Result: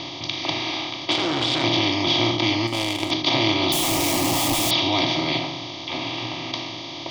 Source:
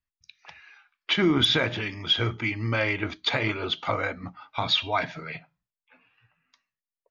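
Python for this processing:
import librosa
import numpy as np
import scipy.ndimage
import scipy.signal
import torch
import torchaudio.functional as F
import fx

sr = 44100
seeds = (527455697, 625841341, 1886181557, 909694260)

y = fx.bin_compress(x, sr, power=0.2)
y = scipy.signal.sosfilt(scipy.signal.cheby1(6, 3, 6300.0, 'lowpass', fs=sr, output='sos'), y)
y = fx.high_shelf(y, sr, hz=5000.0, db=10.0)
y = fx.power_curve(y, sr, exponent=1.4, at=(2.67, 3.11))
y = fx.schmitt(y, sr, flips_db=-29.5, at=(3.72, 4.71))
y = fx.peak_eq(y, sr, hz=3600.0, db=-6.0, octaves=0.3)
y = fx.fixed_phaser(y, sr, hz=300.0, stages=8)
y = fx.transformer_sat(y, sr, knee_hz=1700.0, at=(1.11, 1.64))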